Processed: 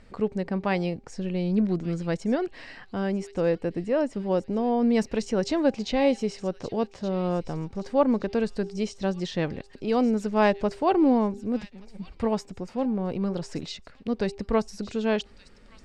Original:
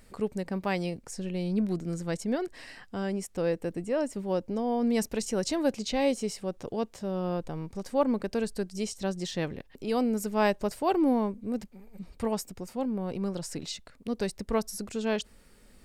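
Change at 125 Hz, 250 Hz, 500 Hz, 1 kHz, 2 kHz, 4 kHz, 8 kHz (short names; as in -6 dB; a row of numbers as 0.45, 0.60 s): +4.5, +4.5, +4.0, +4.0, +3.5, +1.0, -6.0 dB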